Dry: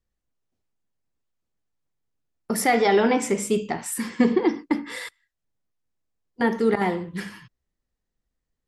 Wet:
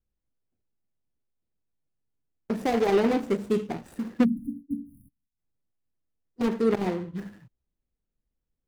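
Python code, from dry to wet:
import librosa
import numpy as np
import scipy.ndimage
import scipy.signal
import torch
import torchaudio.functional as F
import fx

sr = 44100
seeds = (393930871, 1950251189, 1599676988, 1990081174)

y = scipy.ndimage.median_filter(x, 41, mode='constant')
y = fx.spec_erase(y, sr, start_s=4.24, length_s=1.14, low_hz=290.0, high_hz=9200.0)
y = F.gain(torch.from_numpy(y), -1.5).numpy()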